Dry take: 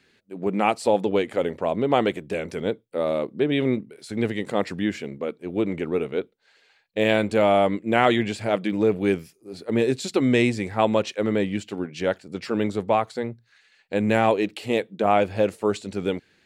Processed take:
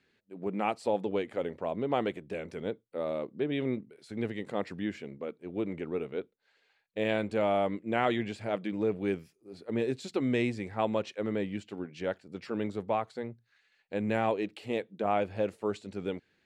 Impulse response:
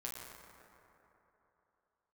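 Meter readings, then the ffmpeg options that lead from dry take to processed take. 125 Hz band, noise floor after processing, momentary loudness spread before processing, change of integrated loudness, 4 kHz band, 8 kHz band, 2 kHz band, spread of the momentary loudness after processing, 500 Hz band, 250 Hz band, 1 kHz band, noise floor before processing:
-9.0 dB, -73 dBFS, 10 LU, -9.0 dB, -11.5 dB, under -10 dB, -10.0 dB, 10 LU, -9.0 dB, -9.0 dB, -9.0 dB, -63 dBFS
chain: -af "highshelf=f=5.4k:g=-8.5,volume=-9dB"

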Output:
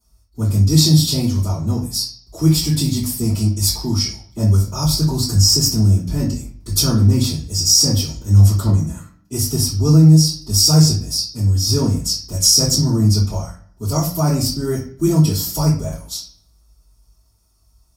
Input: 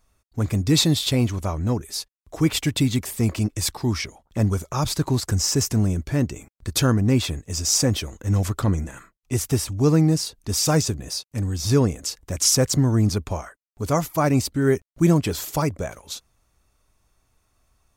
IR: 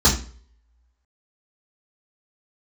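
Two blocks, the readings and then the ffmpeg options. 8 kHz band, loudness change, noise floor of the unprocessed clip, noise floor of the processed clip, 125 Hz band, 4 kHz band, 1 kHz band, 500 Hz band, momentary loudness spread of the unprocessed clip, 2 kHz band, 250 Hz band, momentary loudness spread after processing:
+6.5 dB, +6.5 dB, -75 dBFS, -57 dBFS, +7.5 dB, +9.0 dB, -1.5 dB, -1.0 dB, 11 LU, n/a, +4.0 dB, 11 LU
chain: -filter_complex "[0:a]aexciter=amount=9.7:drive=1.2:freq=5k[a];[1:a]atrim=start_sample=2205,asetrate=33516,aresample=44100[b];[a][b]afir=irnorm=-1:irlink=0,alimiter=level_in=-23dB:limit=-1dB:release=50:level=0:latency=1,volume=-1dB"

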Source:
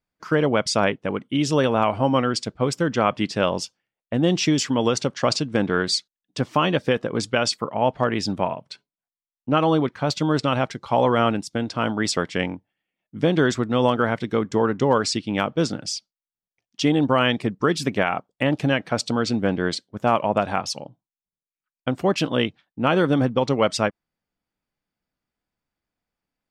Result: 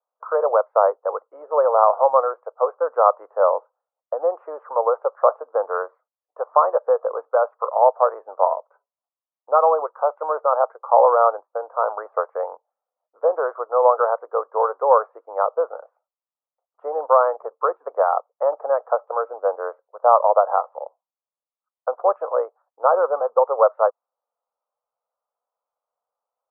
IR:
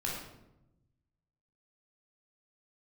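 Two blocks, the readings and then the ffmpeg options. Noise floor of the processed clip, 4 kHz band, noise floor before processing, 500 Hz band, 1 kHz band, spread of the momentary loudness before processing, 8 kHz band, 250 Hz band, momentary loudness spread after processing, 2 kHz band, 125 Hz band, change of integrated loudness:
under -85 dBFS, under -40 dB, under -85 dBFS, +4.5 dB, +6.0 dB, 7 LU, under -40 dB, under -25 dB, 12 LU, -11.0 dB, under -40 dB, +2.0 dB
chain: -af "asuperpass=centerf=790:order=12:qfactor=0.97,volume=6.5dB"

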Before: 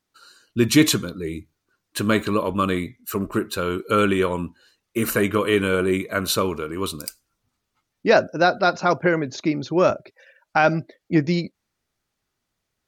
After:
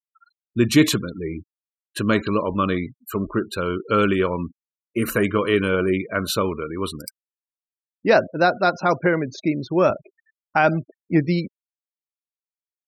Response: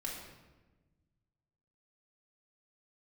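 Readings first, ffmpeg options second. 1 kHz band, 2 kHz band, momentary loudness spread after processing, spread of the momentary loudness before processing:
0.0 dB, 0.0 dB, 12 LU, 12 LU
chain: -af "afftfilt=real='re*gte(hypot(re,im),0.0224)':imag='im*gte(hypot(re,im),0.0224)':win_size=1024:overlap=0.75,bass=f=250:g=1,treble=f=4k:g=-4"

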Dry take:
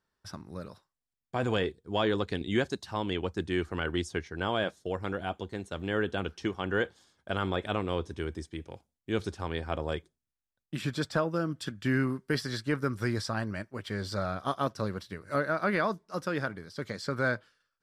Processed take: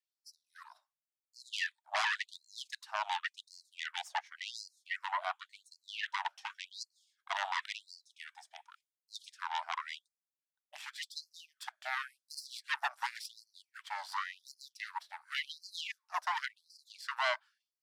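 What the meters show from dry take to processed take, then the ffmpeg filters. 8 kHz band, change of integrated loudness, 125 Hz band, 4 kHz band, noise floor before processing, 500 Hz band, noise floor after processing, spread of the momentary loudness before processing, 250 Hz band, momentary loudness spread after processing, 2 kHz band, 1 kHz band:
-1.5 dB, -6.5 dB, under -40 dB, -1.5 dB, under -85 dBFS, -19.5 dB, under -85 dBFS, 9 LU, under -40 dB, 18 LU, -3.5 dB, -2.5 dB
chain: -af "highpass=f=460:t=q:w=5.6,aeval=exprs='0.376*(cos(1*acos(clip(val(0)/0.376,-1,1)))-cos(1*PI/2))+0.00299*(cos(2*acos(clip(val(0)/0.376,-1,1)))-cos(2*PI/2))+0.0106*(cos(6*acos(clip(val(0)/0.376,-1,1)))-cos(6*PI/2))+0.119*(cos(8*acos(clip(val(0)/0.376,-1,1)))-cos(8*PI/2))':c=same,afftfilt=real='re*gte(b*sr/1024,590*pow(4200/590,0.5+0.5*sin(2*PI*0.91*pts/sr)))':imag='im*gte(b*sr/1024,590*pow(4200/590,0.5+0.5*sin(2*PI*0.91*pts/sr)))':win_size=1024:overlap=0.75,volume=-8dB"

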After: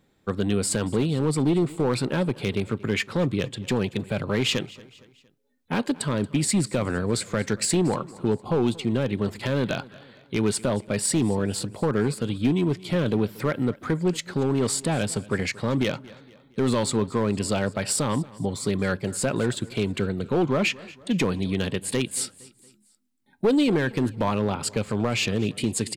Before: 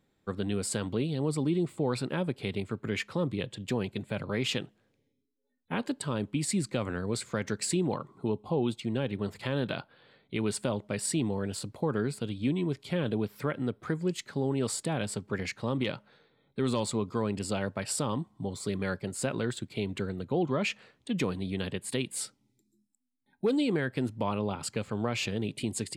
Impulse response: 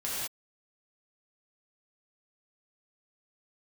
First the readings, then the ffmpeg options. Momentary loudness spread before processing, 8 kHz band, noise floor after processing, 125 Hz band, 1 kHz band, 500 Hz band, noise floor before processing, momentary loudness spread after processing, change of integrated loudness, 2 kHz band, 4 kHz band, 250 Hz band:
5 LU, +7.5 dB, -61 dBFS, +6.5 dB, +6.5 dB, +6.5 dB, -74 dBFS, 5 LU, +7.0 dB, +6.5 dB, +7.0 dB, +7.0 dB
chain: -filter_complex "[0:a]acontrast=25,aeval=exprs='clip(val(0),-1,0.112)':c=same,asplit=2[a][b];[b]aecho=0:1:231|462|693:0.0891|0.041|0.0189[c];[a][c]amix=inputs=2:normalize=0,volume=2.5dB"

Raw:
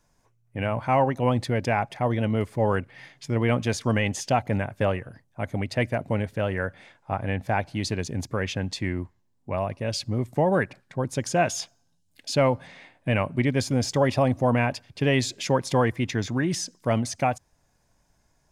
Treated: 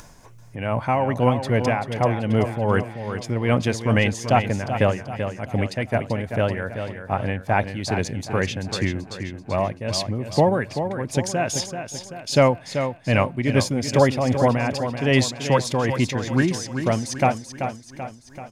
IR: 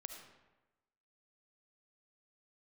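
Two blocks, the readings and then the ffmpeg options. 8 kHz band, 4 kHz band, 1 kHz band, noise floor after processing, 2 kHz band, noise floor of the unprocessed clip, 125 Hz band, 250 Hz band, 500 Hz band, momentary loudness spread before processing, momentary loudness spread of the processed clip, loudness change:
+3.5 dB, +4.0 dB, +3.5 dB, -45 dBFS, +3.5 dB, -68 dBFS, +3.5 dB, +3.5 dB, +3.5 dB, 10 LU, 10 LU, +3.0 dB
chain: -af "aecho=1:1:385|770|1155|1540|1925:0.376|0.177|0.083|0.039|0.0183,tremolo=f=2.5:d=0.58,acompressor=mode=upward:threshold=-37dB:ratio=2.5,volume=5.5dB"

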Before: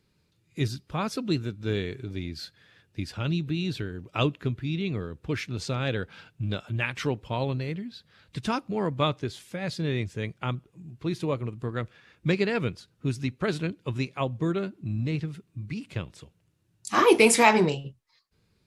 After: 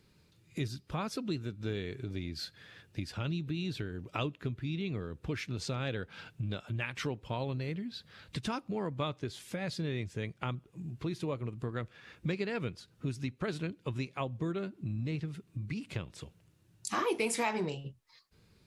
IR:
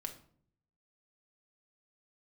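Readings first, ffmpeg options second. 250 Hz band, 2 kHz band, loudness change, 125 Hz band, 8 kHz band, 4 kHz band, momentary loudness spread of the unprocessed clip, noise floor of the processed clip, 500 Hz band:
-8.0 dB, -10.0 dB, -9.0 dB, -6.5 dB, -10.5 dB, -8.0 dB, 12 LU, -66 dBFS, -10.0 dB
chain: -af "acompressor=threshold=-42dB:ratio=2.5,volume=4dB"

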